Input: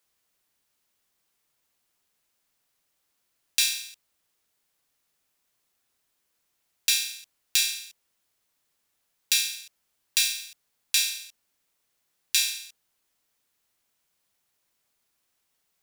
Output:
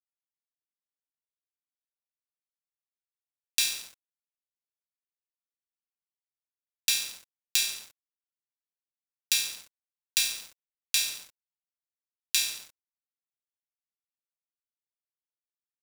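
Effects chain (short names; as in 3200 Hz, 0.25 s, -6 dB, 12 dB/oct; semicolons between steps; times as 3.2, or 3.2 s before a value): in parallel at +3 dB: compressor, threshold -32 dBFS, peak gain reduction 13.5 dB; on the sum: crossover distortion -35.5 dBFS; gain -4.5 dB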